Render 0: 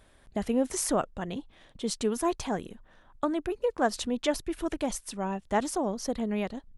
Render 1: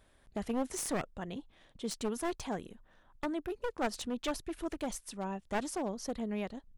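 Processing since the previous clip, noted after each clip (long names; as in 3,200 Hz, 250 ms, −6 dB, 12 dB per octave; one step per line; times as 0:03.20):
wavefolder on the positive side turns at −26.5 dBFS
level −6 dB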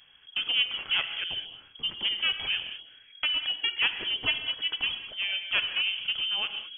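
reverb whose tail is shaped and stops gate 240 ms flat, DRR 7.5 dB
voice inversion scrambler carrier 3,300 Hz
level +6.5 dB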